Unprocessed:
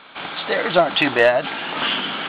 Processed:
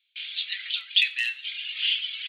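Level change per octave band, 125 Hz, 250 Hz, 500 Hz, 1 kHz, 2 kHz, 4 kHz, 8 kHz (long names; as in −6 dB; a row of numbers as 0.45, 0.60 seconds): below −40 dB, below −40 dB, below −40 dB, below −35 dB, −7.5 dB, −0.5 dB, can't be measured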